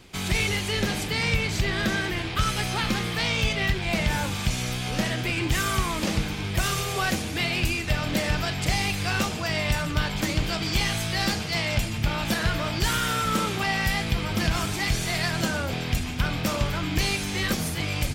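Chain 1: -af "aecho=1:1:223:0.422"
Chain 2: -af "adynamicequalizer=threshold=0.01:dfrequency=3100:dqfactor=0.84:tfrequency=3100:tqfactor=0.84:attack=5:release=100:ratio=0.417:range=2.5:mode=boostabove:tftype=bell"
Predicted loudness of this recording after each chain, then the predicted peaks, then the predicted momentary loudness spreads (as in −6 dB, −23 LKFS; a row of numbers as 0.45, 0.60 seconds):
−25.0, −23.5 LKFS; −10.5, −9.0 dBFS; 3, 4 LU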